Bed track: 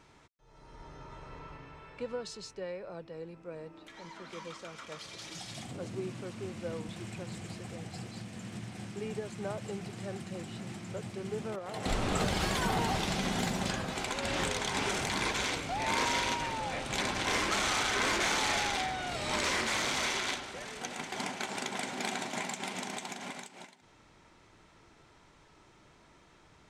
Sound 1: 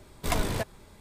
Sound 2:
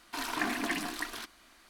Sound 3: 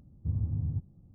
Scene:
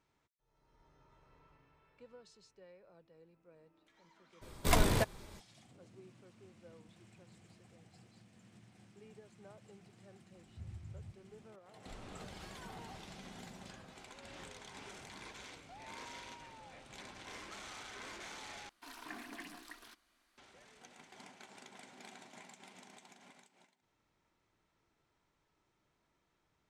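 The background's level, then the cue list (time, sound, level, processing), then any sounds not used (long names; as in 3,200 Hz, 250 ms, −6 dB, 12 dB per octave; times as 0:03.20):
bed track −19 dB
0:04.41: mix in 1 −0.5 dB, fades 0.02 s
0:10.32: mix in 3 −15.5 dB + parametric band 340 Hz −13.5 dB 1.6 octaves
0:18.69: overwrite with 2 −16 dB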